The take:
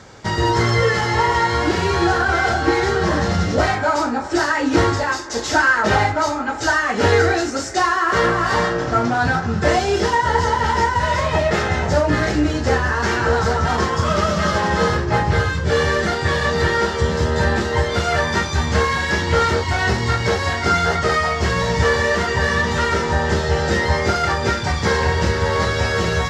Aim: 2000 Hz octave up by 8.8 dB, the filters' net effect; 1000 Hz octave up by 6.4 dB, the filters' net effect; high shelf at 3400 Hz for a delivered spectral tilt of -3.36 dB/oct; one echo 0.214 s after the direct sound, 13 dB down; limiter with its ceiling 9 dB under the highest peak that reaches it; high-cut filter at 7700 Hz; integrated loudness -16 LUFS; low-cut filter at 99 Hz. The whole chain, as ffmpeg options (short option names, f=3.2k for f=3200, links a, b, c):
-af "highpass=99,lowpass=7.7k,equalizer=f=1k:t=o:g=5,equalizer=f=2k:t=o:g=7,highshelf=f=3.4k:g=8.5,alimiter=limit=-6dB:level=0:latency=1,aecho=1:1:214:0.224,volume=-1.5dB"